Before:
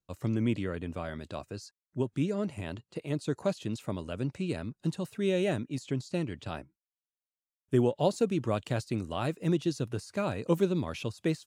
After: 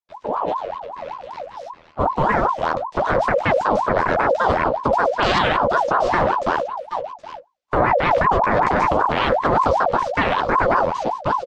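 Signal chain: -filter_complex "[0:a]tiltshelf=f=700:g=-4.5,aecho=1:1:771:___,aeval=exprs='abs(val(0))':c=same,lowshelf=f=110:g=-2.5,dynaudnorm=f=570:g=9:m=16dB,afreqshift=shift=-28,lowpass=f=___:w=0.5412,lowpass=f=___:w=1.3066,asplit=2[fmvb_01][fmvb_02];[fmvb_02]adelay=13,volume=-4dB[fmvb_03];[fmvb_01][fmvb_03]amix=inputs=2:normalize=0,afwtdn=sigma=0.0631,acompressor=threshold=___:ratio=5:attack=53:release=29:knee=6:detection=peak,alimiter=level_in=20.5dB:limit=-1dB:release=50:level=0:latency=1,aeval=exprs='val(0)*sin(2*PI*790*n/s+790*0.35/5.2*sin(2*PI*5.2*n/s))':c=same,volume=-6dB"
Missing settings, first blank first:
0.237, 5.9k, 5.9k, -27dB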